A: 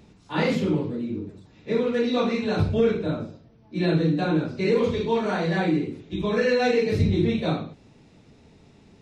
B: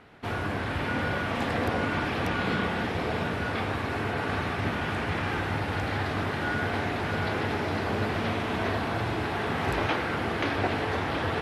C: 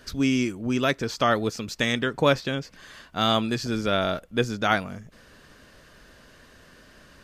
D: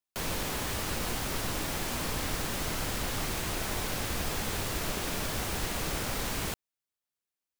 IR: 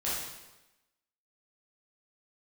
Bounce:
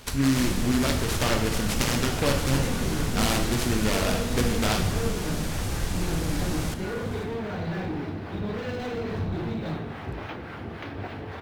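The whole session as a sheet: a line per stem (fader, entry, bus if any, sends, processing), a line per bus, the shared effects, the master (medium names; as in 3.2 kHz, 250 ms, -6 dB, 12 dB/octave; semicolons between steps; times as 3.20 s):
-10.5 dB, 2.20 s, send -13.5 dB, hard clipper -24.5 dBFS, distortion -8 dB
-9.0 dB, 0.40 s, no send, harmonic tremolo 3.6 Hz, depth 50%, crossover 600 Hz
-3.5 dB, 0.00 s, send -7 dB, treble shelf 2.2 kHz +10.5 dB; compression 2.5:1, threshold -27 dBFS, peak gain reduction 10 dB; delay time shaken by noise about 1.7 kHz, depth 0.15 ms
+1.0 dB, 0.20 s, send -21 dB, tone controls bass +4 dB, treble +5 dB; auto duck -7 dB, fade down 0.75 s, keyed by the third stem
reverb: on, RT60 1.0 s, pre-delay 7 ms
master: bass shelf 300 Hz +8 dB; decimation joined by straight lines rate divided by 2×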